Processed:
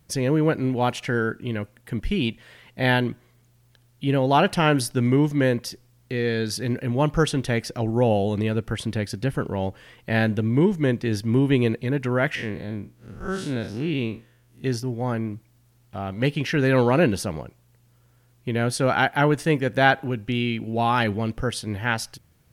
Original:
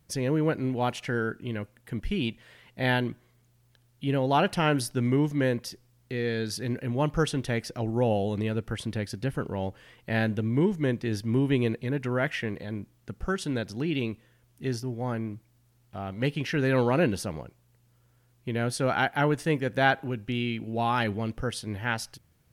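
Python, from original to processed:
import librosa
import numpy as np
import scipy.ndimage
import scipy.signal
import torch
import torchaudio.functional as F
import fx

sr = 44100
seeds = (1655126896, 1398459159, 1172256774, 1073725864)

y = fx.spec_blur(x, sr, span_ms=113.0, at=(12.35, 14.64))
y = y * 10.0 ** (5.0 / 20.0)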